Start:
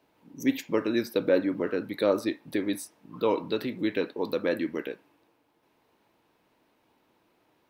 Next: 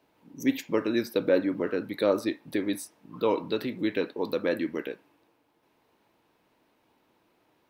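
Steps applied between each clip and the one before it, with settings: no audible change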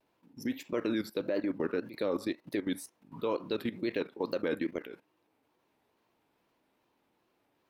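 level held to a coarse grid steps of 15 dB; wow and flutter 140 cents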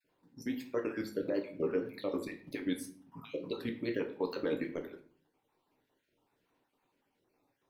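random holes in the spectrogram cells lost 33%; simulated room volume 43 m³, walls mixed, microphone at 0.4 m; trim -3 dB

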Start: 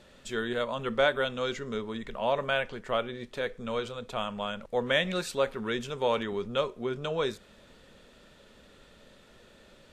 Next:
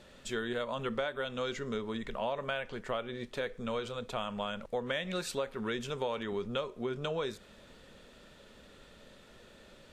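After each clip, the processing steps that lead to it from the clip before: compression 6:1, threshold -31 dBFS, peak gain reduction 11.5 dB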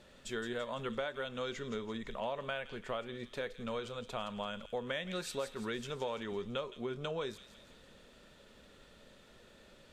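feedback echo behind a high-pass 168 ms, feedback 52%, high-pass 2.8 kHz, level -8.5 dB; trim -3.5 dB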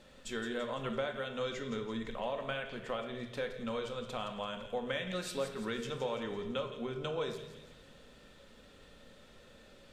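reverberation RT60 1.1 s, pre-delay 4 ms, DRR 4.5 dB

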